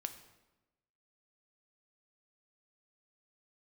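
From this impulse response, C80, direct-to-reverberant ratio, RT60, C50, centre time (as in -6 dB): 13.0 dB, 8.0 dB, 1.1 s, 11.5 dB, 11 ms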